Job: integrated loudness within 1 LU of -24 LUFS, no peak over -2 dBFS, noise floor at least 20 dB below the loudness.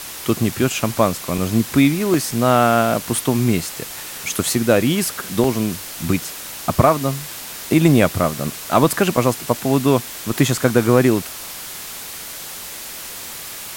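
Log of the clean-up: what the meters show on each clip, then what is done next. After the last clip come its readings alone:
dropouts 6; longest dropout 1.9 ms; noise floor -33 dBFS; noise floor target -39 dBFS; loudness -18.5 LUFS; peak -1.0 dBFS; loudness target -24.0 LUFS
-> interpolate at 0.52/1.38/2.14/5.44/9.17/10.31, 1.9 ms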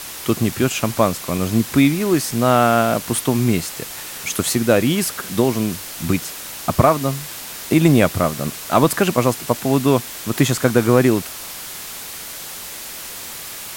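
dropouts 0; noise floor -33 dBFS; noise floor target -39 dBFS
-> denoiser 6 dB, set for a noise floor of -33 dBFS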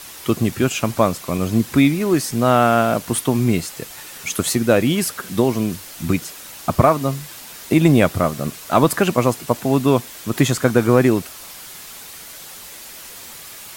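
noise floor -38 dBFS; noise floor target -39 dBFS
-> denoiser 6 dB, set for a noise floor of -38 dBFS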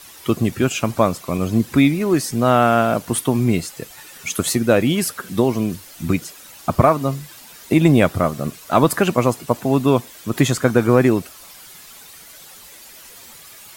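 noise floor -42 dBFS; loudness -18.5 LUFS; peak -1.5 dBFS; loudness target -24.0 LUFS
-> gain -5.5 dB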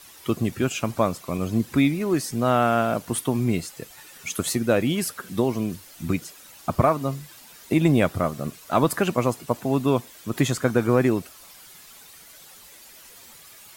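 loudness -24.0 LUFS; peak -7.0 dBFS; noise floor -48 dBFS

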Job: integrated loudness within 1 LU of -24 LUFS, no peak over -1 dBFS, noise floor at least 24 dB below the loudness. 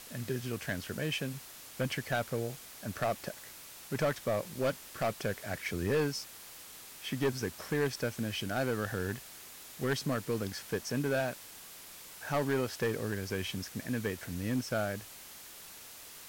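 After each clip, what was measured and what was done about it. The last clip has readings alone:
clipped 1.1%; flat tops at -24.5 dBFS; noise floor -50 dBFS; noise floor target -59 dBFS; loudness -35.0 LUFS; peak -24.5 dBFS; loudness target -24.0 LUFS
-> clip repair -24.5 dBFS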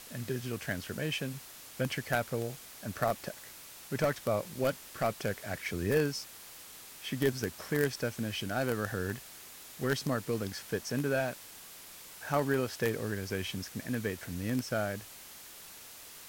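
clipped 0.0%; noise floor -50 dBFS; noise floor target -58 dBFS
-> denoiser 8 dB, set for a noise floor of -50 dBFS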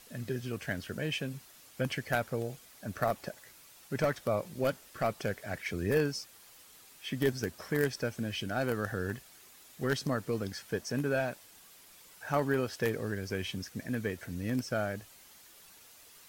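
noise floor -57 dBFS; noise floor target -59 dBFS
-> denoiser 6 dB, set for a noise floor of -57 dBFS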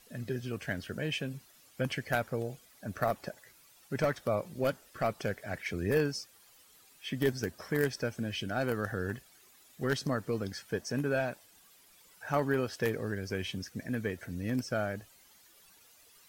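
noise floor -61 dBFS; loudness -34.5 LUFS; peak -15.5 dBFS; loudness target -24.0 LUFS
-> gain +10.5 dB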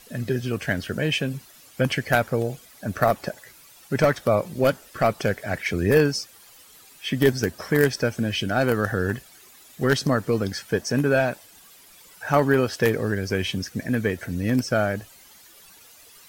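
loudness -24.0 LUFS; peak -5.0 dBFS; noise floor -51 dBFS

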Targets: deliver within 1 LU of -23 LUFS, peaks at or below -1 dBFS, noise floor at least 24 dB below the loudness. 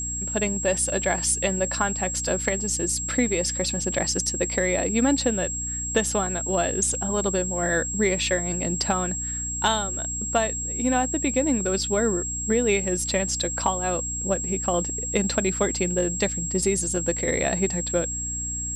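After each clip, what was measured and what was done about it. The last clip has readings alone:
hum 60 Hz; harmonics up to 300 Hz; hum level -33 dBFS; steady tone 7600 Hz; tone level -28 dBFS; loudness -24.0 LUFS; peak -9.0 dBFS; loudness target -23.0 LUFS
-> notches 60/120/180/240/300 Hz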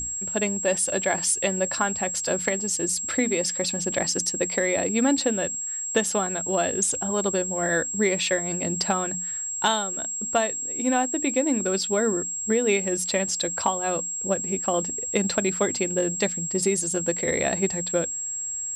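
hum none; steady tone 7600 Hz; tone level -28 dBFS
-> notch 7600 Hz, Q 30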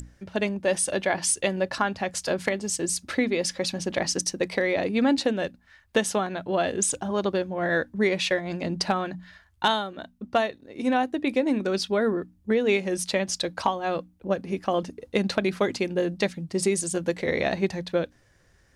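steady tone none; loudness -26.5 LUFS; peak -10.0 dBFS; loudness target -23.0 LUFS
-> gain +3.5 dB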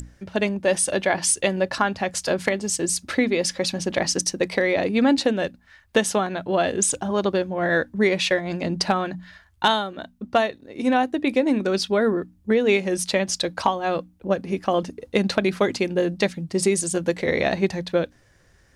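loudness -23.0 LUFS; peak -6.5 dBFS; noise floor -58 dBFS

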